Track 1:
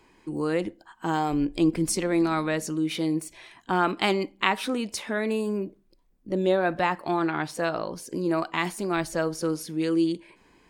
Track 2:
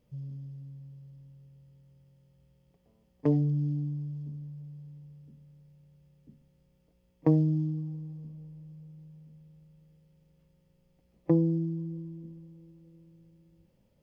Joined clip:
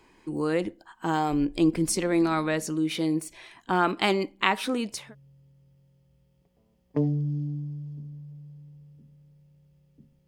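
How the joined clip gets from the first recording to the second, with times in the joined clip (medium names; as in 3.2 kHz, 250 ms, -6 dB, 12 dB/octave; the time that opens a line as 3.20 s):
track 1
5.01 s: go over to track 2 from 1.30 s, crossfade 0.28 s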